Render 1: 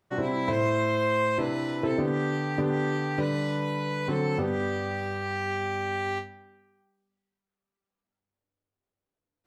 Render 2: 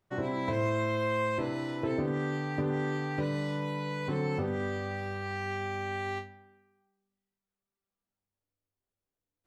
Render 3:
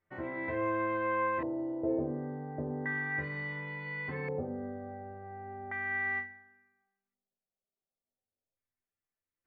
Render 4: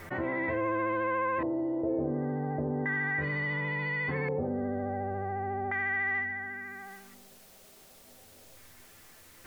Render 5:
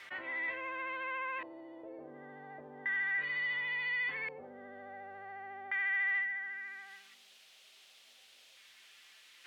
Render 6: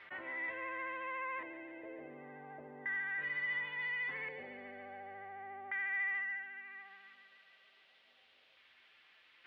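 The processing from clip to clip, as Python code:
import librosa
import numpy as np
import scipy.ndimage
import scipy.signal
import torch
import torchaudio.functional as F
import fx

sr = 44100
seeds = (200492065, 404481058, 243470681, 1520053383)

y1 = fx.low_shelf(x, sr, hz=64.0, db=9.0)
y1 = y1 * 10.0 ** (-5.0 / 20.0)
y2 = fx.stiff_resonator(y1, sr, f0_hz=78.0, decay_s=0.22, stiffness=0.008)
y2 = fx.filter_lfo_lowpass(y2, sr, shape='square', hz=0.35, low_hz=610.0, high_hz=2000.0, q=3.0)
y3 = fx.vibrato(y2, sr, rate_hz=14.0, depth_cents=30.0)
y3 = fx.env_flatten(y3, sr, amount_pct=70)
y4 = fx.bandpass_q(y3, sr, hz=3100.0, q=2.0)
y4 = y4 * 10.0 ** (5.5 / 20.0)
y5 = fx.air_absorb(y4, sr, metres=400.0)
y5 = fx.echo_wet_highpass(y5, sr, ms=142, feedback_pct=76, hz=1600.0, wet_db=-9.0)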